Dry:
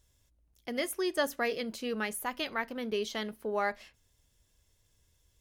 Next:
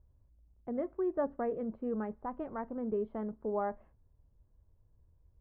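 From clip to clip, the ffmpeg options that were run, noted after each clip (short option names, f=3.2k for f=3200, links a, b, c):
-af "lowpass=f=1.1k:w=0.5412,lowpass=f=1.1k:w=1.3066,lowshelf=f=180:g=9.5,volume=-2.5dB"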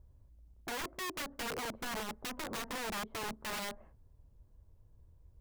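-af "acompressor=threshold=-37dB:ratio=16,aeval=exprs='(mod(89.1*val(0)+1,2)-1)/89.1':c=same,volume=5dB"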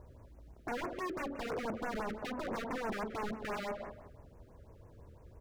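-filter_complex "[0:a]asplit=2[a][b];[b]highpass=f=720:p=1,volume=28dB,asoftclip=type=tanh:threshold=-33.5dB[c];[a][c]amix=inputs=2:normalize=0,lowpass=f=1.2k:p=1,volume=-6dB,asplit=2[d][e];[e]adelay=180,lowpass=f=3.1k:p=1,volume=-11.5dB,asplit=2[f][g];[g]adelay=180,lowpass=f=3.1k:p=1,volume=0.28,asplit=2[h][i];[i]adelay=180,lowpass=f=3.1k:p=1,volume=0.28[j];[d][f][h][j]amix=inputs=4:normalize=0,afftfilt=real='re*(1-between(b*sr/1024,810*pow(4100/810,0.5+0.5*sin(2*PI*6*pts/sr))/1.41,810*pow(4100/810,0.5+0.5*sin(2*PI*6*pts/sr))*1.41))':imag='im*(1-between(b*sr/1024,810*pow(4100/810,0.5+0.5*sin(2*PI*6*pts/sr))/1.41,810*pow(4100/810,0.5+0.5*sin(2*PI*6*pts/sr))*1.41))':win_size=1024:overlap=0.75,volume=2.5dB"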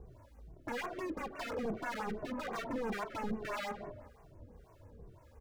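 -filter_complex "[0:a]acrossover=split=640[a][b];[a]aeval=exprs='val(0)*(1-0.7/2+0.7/2*cos(2*PI*1.8*n/s))':c=same[c];[b]aeval=exprs='val(0)*(1-0.7/2-0.7/2*cos(2*PI*1.8*n/s))':c=same[d];[c][d]amix=inputs=2:normalize=0,asoftclip=type=tanh:threshold=-32.5dB,asplit=2[e][f];[f]adelay=2.1,afreqshift=-2.4[g];[e][g]amix=inputs=2:normalize=1,volume=6.5dB"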